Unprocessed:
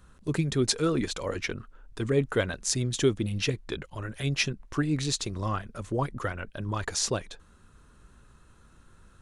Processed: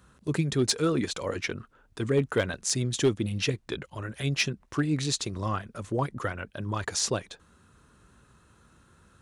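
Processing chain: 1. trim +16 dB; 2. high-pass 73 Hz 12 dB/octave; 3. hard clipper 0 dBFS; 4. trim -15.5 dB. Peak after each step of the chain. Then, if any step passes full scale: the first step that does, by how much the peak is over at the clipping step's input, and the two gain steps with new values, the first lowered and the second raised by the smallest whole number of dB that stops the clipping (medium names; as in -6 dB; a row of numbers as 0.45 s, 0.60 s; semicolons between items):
+8.0 dBFS, +8.0 dBFS, 0.0 dBFS, -15.5 dBFS; step 1, 8.0 dB; step 1 +8 dB, step 4 -7.5 dB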